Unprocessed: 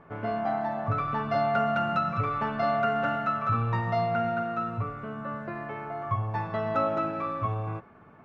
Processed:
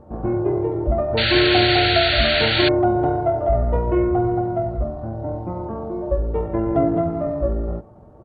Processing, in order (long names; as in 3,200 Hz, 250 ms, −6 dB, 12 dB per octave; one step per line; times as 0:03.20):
pitch shifter −11.5 semitones
sound drawn into the spectrogram noise, 0:01.17–0:02.69, 1,300–4,600 Hz −29 dBFS
level +8.5 dB